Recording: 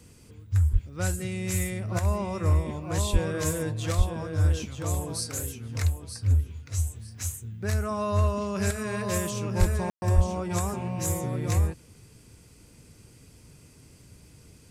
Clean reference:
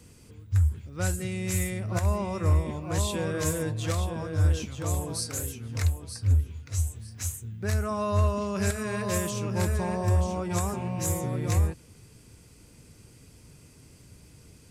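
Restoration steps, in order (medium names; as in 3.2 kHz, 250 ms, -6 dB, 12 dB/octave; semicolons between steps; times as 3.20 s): de-plosive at 0.72/3.12/3.97/9.59/10.15 s; room tone fill 9.90–10.02 s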